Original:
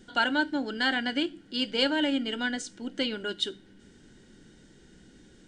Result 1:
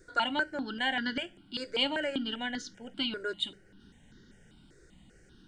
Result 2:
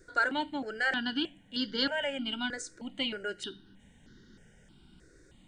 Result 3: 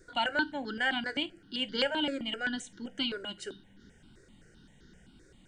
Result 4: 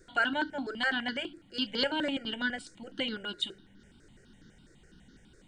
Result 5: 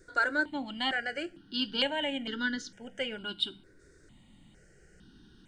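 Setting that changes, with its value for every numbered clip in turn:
stepped phaser, rate: 5.1 Hz, 3.2 Hz, 7.7 Hz, 12 Hz, 2.2 Hz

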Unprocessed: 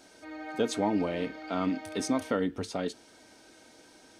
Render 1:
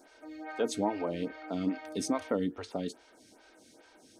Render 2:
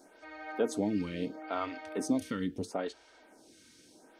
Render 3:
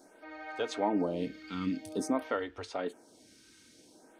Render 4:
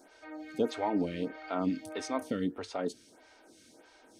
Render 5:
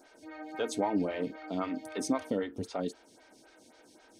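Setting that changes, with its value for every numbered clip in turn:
lamp-driven phase shifter, rate: 2.4 Hz, 0.75 Hz, 0.5 Hz, 1.6 Hz, 3.8 Hz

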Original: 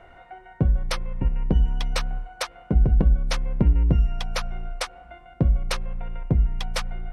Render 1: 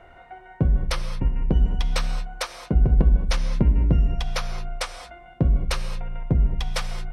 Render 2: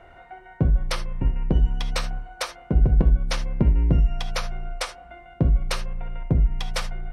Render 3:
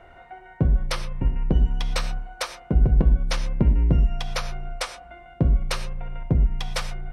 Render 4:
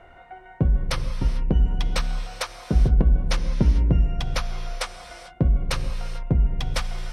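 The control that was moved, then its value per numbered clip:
gated-style reverb, gate: 250 ms, 100 ms, 140 ms, 470 ms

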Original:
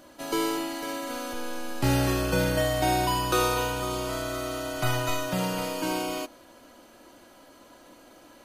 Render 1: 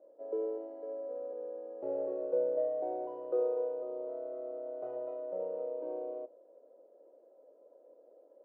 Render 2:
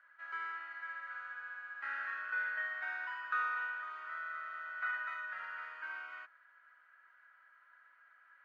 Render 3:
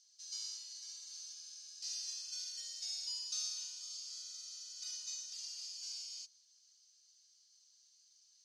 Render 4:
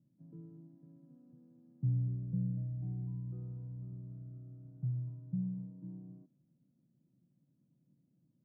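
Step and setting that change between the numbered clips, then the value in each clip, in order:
Butterworth band-pass, frequency: 500 Hz, 1.6 kHz, 5.5 kHz, 150 Hz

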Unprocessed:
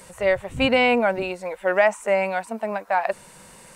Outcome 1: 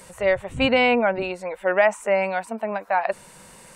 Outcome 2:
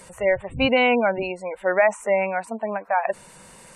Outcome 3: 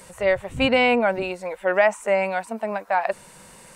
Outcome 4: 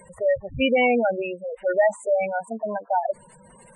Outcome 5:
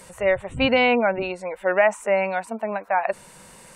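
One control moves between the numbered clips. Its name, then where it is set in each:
spectral gate, under each frame's peak: -45 dB, -25 dB, -60 dB, -10 dB, -35 dB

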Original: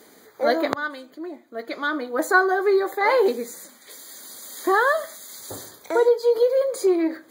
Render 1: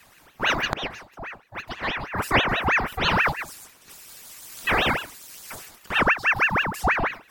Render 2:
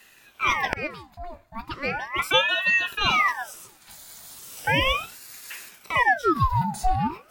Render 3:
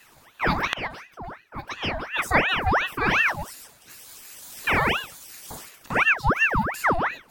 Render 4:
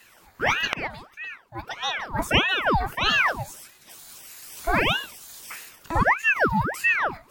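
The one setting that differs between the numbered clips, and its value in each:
ring modulator with a swept carrier, at: 6.2 Hz, 0.37 Hz, 2.8 Hz, 1.6 Hz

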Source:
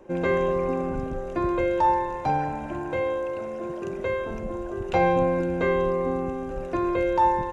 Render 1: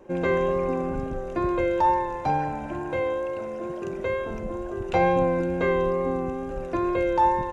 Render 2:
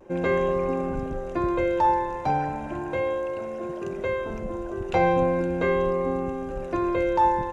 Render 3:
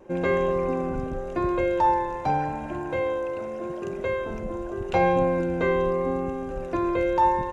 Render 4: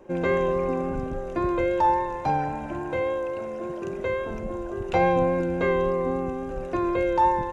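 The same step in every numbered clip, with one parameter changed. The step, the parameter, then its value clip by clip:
vibrato, rate: 2.2 Hz, 0.37 Hz, 0.84 Hz, 3.6 Hz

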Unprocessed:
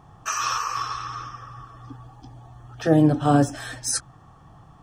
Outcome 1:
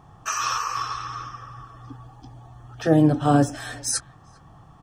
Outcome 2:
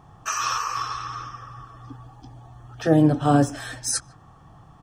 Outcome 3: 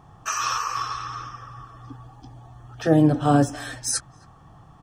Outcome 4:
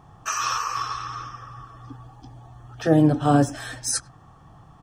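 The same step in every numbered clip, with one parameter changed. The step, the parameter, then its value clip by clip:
speakerphone echo, time: 400 ms, 150 ms, 270 ms, 100 ms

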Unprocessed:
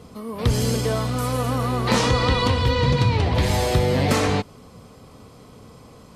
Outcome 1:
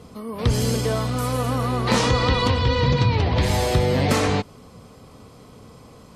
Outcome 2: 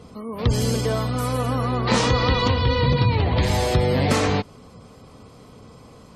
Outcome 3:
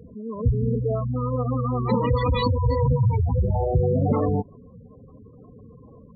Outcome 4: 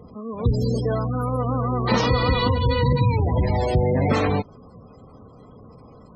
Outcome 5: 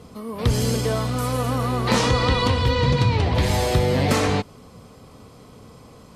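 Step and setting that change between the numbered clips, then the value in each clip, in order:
spectral gate, under each frame's peak: -45 dB, -35 dB, -10 dB, -20 dB, -60 dB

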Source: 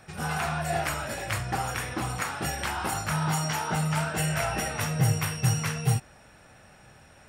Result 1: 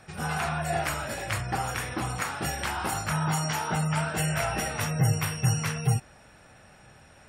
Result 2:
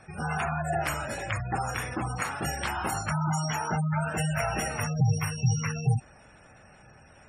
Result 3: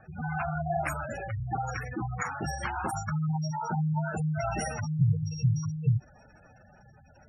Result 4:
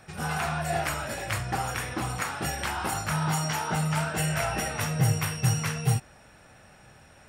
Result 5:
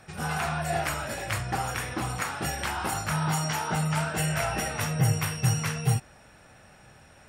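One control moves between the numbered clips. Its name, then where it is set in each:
spectral gate, under each frame's peak: -35 dB, -20 dB, -10 dB, -60 dB, -45 dB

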